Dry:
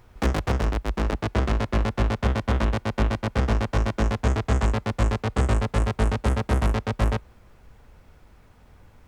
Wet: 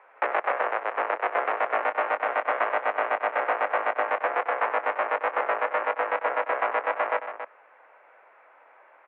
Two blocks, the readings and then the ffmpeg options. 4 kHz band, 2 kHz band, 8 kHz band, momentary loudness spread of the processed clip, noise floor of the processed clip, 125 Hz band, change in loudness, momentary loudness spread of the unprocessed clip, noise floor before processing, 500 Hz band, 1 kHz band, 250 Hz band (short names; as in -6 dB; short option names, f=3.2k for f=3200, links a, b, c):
-9.0 dB, +6.0 dB, under -40 dB, 2 LU, -56 dBFS, under -40 dB, -1.5 dB, 2 LU, -54 dBFS, +2.5 dB, +6.5 dB, -20.0 dB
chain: -filter_complex "[0:a]alimiter=limit=-13.5dB:level=0:latency=1:release=85,asplit=2[a][b];[b]aecho=0:1:96.21|277:0.251|0.316[c];[a][c]amix=inputs=2:normalize=0,highpass=f=500:t=q:w=0.5412,highpass=f=500:t=q:w=1.307,lowpass=f=2.3k:t=q:w=0.5176,lowpass=f=2.3k:t=q:w=0.7071,lowpass=f=2.3k:t=q:w=1.932,afreqshift=56,volume=6.5dB"